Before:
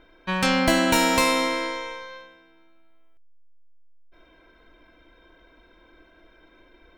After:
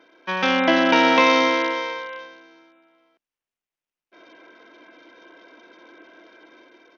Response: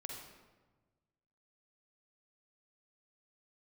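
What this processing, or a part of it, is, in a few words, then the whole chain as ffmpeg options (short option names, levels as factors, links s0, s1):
Bluetooth headset: -af "highpass=f=240:w=0.5412,highpass=f=240:w=1.3066,dynaudnorm=f=360:g=5:m=2,aresample=8000,aresample=44100,volume=1.26" -ar 48000 -c:a sbc -b:a 64k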